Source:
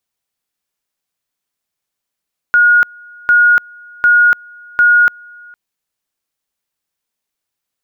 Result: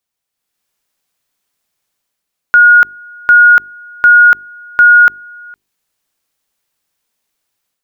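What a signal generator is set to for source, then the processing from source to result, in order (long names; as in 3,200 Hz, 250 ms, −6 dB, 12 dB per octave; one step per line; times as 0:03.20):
tone at two levels in turn 1,440 Hz −5.5 dBFS, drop 28.5 dB, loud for 0.29 s, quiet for 0.46 s, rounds 4
mains-hum notches 50/100/150/200/250/300/350/400 Hz
automatic gain control gain up to 8.5 dB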